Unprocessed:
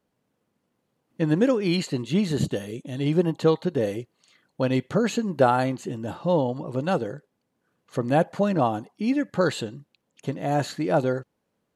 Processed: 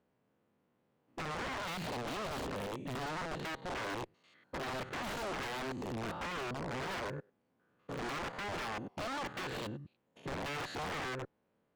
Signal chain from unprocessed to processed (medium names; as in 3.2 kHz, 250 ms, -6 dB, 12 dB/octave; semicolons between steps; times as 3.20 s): spectrogram pixelated in time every 100 ms; compression 8:1, threshold -25 dBFS, peak gain reduction 9.5 dB; integer overflow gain 28.5 dB; tone controls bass -2 dB, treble -14 dB; Chebyshev shaper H 5 -15 dB, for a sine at -27 dBFS; trim -5 dB